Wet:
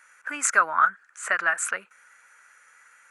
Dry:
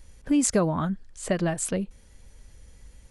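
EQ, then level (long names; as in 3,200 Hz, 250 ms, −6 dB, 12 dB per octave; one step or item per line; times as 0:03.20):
high-pass with resonance 1,400 Hz, resonance Q 6.8
flat-topped bell 4,000 Hz −11 dB 1 octave
high-shelf EQ 8,600 Hz −11 dB
+6.0 dB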